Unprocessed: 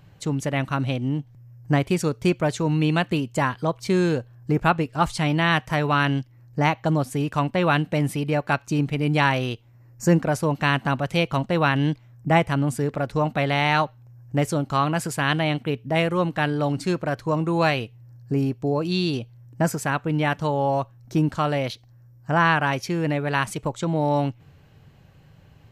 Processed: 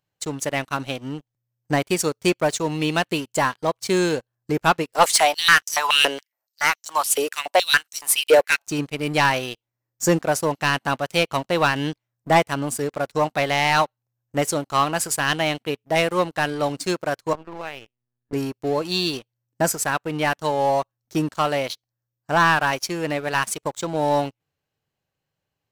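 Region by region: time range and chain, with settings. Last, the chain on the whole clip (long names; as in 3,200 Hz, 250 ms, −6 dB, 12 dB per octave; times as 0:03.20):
0:04.92–0:08.67: high-shelf EQ 6,000 Hz +11.5 dB + high-pass on a step sequencer 7.1 Hz 480–5,900 Hz
0:17.33–0:18.33: low-shelf EQ 78 Hz −10.5 dB + downward compressor 3 to 1, threshold −29 dBFS + linear-prediction vocoder at 8 kHz pitch kept
whole clip: bass and treble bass −11 dB, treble +8 dB; leveller curve on the samples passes 3; expander for the loud parts 1.5 to 1, over −32 dBFS; level −4.5 dB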